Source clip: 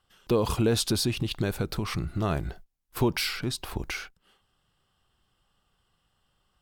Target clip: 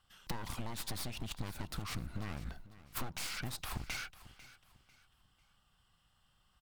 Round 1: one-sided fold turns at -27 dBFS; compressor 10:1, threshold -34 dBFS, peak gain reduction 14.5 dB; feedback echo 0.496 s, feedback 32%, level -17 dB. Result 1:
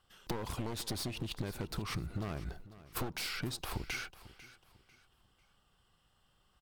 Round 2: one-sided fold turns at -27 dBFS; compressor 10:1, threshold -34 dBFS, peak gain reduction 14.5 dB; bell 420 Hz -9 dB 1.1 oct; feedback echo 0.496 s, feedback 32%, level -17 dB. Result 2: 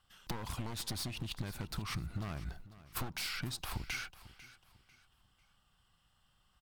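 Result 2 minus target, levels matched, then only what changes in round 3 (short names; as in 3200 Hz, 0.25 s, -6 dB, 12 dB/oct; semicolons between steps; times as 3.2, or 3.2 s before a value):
one-sided fold: distortion -8 dB
change: one-sided fold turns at -34 dBFS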